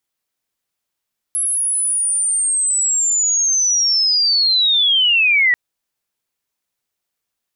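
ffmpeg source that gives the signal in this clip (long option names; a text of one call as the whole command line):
ffmpeg -f lavfi -i "aevalsrc='pow(10,(-16+5.5*t/4.19)/20)*sin(2*PI*(11000*t-9100*t*t/(2*4.19)))':duration=4.19:sample_rate=44100" out.wav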